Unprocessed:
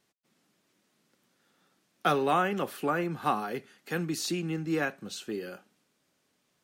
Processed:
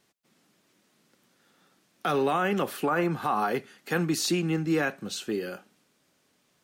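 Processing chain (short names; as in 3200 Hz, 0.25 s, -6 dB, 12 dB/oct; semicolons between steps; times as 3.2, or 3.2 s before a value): 2.82–4.64 dynamic EQ 960 Hz, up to +6 dB, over -41 dBFS, Q 0.97; limiter -21.5 dBFS, peak gain reduction 12 dB; gain +5 dB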